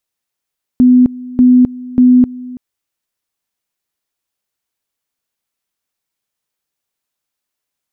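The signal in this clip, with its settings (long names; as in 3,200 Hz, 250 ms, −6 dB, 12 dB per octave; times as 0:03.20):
tone at two levels in turn 250 Hz −3.5 dBFS, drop 20.5 dB, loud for 0.26 s, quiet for 0.33 s, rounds 3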